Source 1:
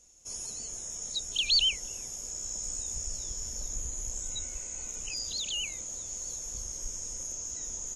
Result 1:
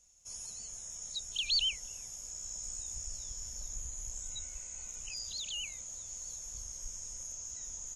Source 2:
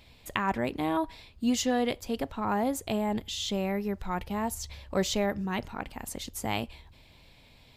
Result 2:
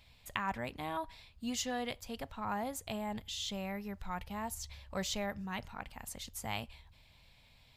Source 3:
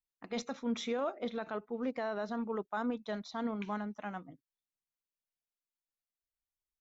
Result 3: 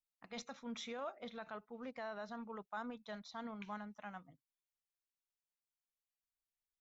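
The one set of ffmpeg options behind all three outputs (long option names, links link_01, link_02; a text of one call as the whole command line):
ffmpeg -i in.wav -af "equalizer=frequency=340:width_type=o:width=1.2:gain=-11,volume=-5.5dB" out.wav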